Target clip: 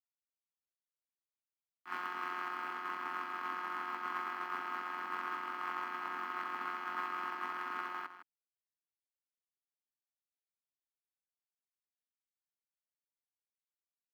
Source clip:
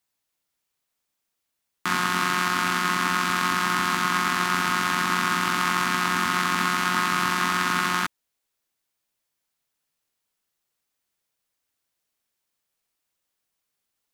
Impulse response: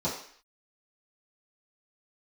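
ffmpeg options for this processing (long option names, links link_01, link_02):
-filter_complex "[0:a]lowpass=5500,agate=range=-33dB:threshold=-11dB:ratio=3:detection=peak,highpass=140,highshelf=frequency=3200:gain=3.5,bandreject=frequency=3700:width=8.4,acrossover=split=310|990[link_01][link_02][link_03];[link_01]acrusher=bits=3:dc=4:mix=0:aa=0.000001[link_04];[link_04][link_02][link_03]amix=inputs=3:normalize=0,adynamicsmooth=sensitivity=0.5:basefreq=2300,asplit=2[link_05][link_06];[link_06]acrusher=bits=4:mode=log:mix=0:aa=0.000001,volume=-5dB[link_07];[link_05][link_07]amix=inputs=2:normalize=0,aecho=1:1:158:0.266,adynamicequalizer=threshold=0.00282:dfrequency=1500:dqfactor=0.7:tfrequency=1500:tqfactor=0.7:attack=5:release=100:ratio=0.375:range=2:mode=cutabove:tftype=highshelf,volume=1dB"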